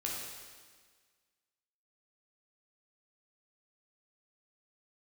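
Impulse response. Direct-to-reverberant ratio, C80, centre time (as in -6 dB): -3.5 dB, 2.5 dB, 85 ms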